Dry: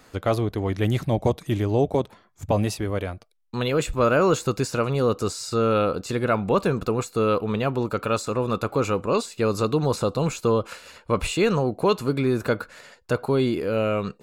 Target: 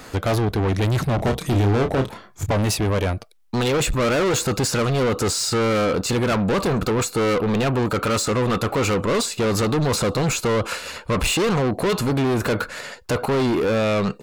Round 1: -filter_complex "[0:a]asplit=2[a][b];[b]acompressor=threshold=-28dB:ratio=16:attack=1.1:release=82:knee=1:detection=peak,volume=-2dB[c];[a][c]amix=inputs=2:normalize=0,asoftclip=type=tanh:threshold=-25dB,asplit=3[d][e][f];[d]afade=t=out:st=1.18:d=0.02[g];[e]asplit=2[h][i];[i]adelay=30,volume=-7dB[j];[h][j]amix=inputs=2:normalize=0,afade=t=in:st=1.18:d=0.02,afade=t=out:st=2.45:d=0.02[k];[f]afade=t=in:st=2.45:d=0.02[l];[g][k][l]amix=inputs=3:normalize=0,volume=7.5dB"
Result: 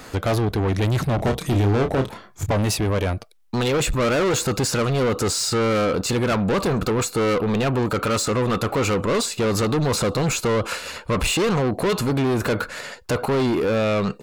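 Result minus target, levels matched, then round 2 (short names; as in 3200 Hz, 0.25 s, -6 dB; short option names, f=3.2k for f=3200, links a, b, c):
compressor: peak gain reduction +7.5 dB
-filter_complex "[0:a]asplit=2[a][b];[b]acompressor=threshold=-20dB:ratio=16:attack=1.1:release=82:knee=1:detection=peak,volume=-2dB[c];[a][c]amix=inputs=2:normalize=0,asoftclip=type=tanh:threshold=-25dB,asplit=3[d][e][f];[d]afade=t=out:st=1.18:d=0.02[g];[e]asplit=2[h][i];[i]adelay=30,volume=-7dB[j];[h][j]amix=inputs=2:normalize=0,afade=t=in:st=1.18:d=0.02,afade=t=out:st=2.45:d=0.02[k];[f]afade=t=in:st=2.45:d=0.02[l];[g][k][l]amix=inputs=3:normalize=0,volume=7.5dB"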